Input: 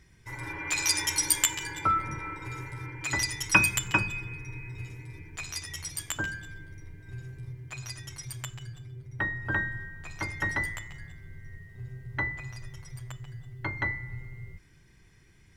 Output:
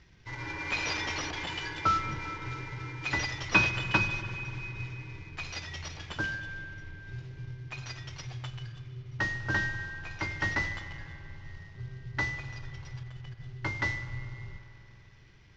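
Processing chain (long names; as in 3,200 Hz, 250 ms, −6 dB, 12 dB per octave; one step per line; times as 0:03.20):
variable-slope delta modulation 32 kbit/s
parametric band 2,900 Hz +2.5 dB 0.34 octaves
0:13.03–0:13.61: compressor whose output falls as the input rises −43 dBFS, ratio −0.5
high-frequency loss of the air 55 metres
spring reverb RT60 3.7 s, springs 48 ms, chirp 55 ms, DRR 11 dB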